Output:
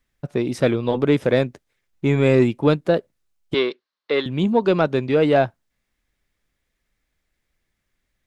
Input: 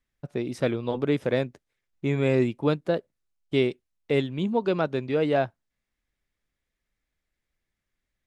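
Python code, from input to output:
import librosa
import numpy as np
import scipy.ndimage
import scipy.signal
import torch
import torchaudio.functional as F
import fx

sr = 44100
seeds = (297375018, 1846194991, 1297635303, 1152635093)

p1 = 10.0 ** (-23.5 / 20.0) * np.tanh(x / 10.0 ** (-23.5 / 20.0))
p2 = x + (p1 * 10.0 ** (-10.5 / 20.0))
p3 = fx.cabinet(p2, sr, low_hz=440.0, low_slope=12, high_hz=4900.0, hz=(720.0, 1100.0, 1600.0, 2500.0, 4200.0), db=(-5, 7, 4, -4, 7), at=(3.54, 4.26))
y = p3 * 10.0 ** (5.5 / 20.0)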